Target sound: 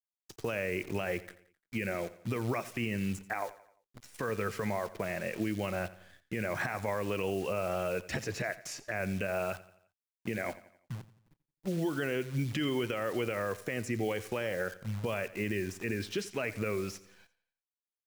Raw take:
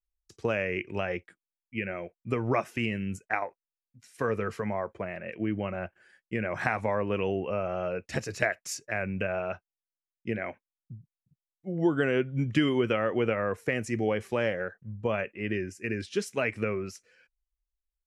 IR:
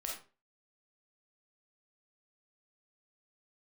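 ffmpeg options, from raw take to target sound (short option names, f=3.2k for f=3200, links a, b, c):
-filter_complex "[0:a]adynamicequalizer=threshold=0.00398:dfrequency=220:dqfactor=7.2:tfrequency=220:tqfactor=7.2:attack=5:release=100:ratio=0.375:range=2:mode=cutabove:tftype=bell,acrusher=bits=9:dc=4:mix=0:aa=0.000001,acrossover=split=1900|3800[a][b][c];[a]acompressor=threshold=-34dB:ratio=4[d];[b]acompressor=threshold=-45dB:ratio=4[e];[c]acompressor=threshold=-50dB:ratio=4[f];[d][e][f]amix=inputs=3:normalize=0,alimiter=level_in=2.5dB:limit=-24dB:level=0:latency=1:release=27,volume=-2.5dB,asplit=2[g][h];[h]aecho=0:1:87|174|261|348:0.133|0.0627|0.0295|0.0138[i];[g][i]amix=inputs=2:normalize=0,volume=4dB"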